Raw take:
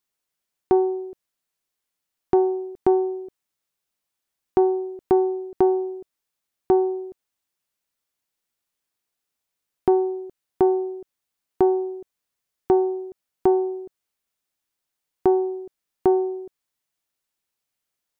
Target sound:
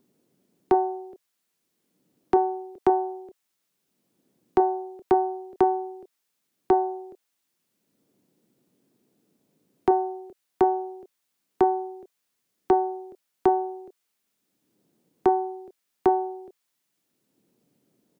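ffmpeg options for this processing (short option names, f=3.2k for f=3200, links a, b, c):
-filter_complex "[0:a]lowshelf=f=500:g=-10.5,acrossover=split=150|320|850[a][b][c][d];[b]acompressor=mode=upward:threshold=-45dB:ratio=2.5[e];[c]asplit=2[f][g];[g]adelay=28,volume=-3dB[h];[f][h]amix=inputs=2:normalize=0[i];[a][e][i][d]amix=inputs=4:normalize=0,volume=5dB"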